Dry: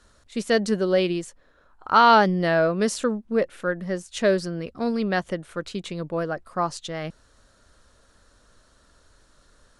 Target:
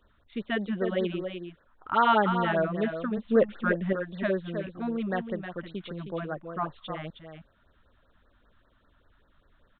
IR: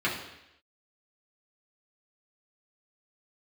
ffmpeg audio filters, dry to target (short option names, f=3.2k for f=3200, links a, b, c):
-filter_complex "[0:a]asettb=1/sr,asplit=3[a][b][c];[a]atrim=end=3.174[d];[b]atrim=start=3.17:end=3.93,asetpts=PTS-STARTPTS,afade=t=in:d=0.004:c=qsin,afade=t=out:st=0.756:d=0.004:c=qsin,acontrast=86[e];[c]atrim=start=3.926[f];[d][e]acrossfade=d=0.004:c1=hsin:c2=qsin[g];[g][f]acrossfade=d=0.004:c1=qsin:c2=hsin,asplit=2[h][i];[i]aecho=0:1:314:0.398[j];[h][j]amix=inputs=2:normalize=0,aresample=8000,aresample=44100,afftfilt=real='re*(1-between(b*sr/1024,390*pow(2900/390,0.5+0.5*sin(2*PI*5.1*pts/sr))/1.41,390*pow(2900/390,0.5+0.5*sin(2*PI*5.1*pts/sr))*1.41))':imag='im*(1-between(b*sr/1024,390*pow(2900/390,0.5+0.5*sin(2*PI*5.1*pts/sr))/1.41,390*pow(2900/390,0.5+0.5*sin(2*PI*5.1*pts/sr))*1.41))':win_size=1024:overlap=0.75,volume=-5.5dB"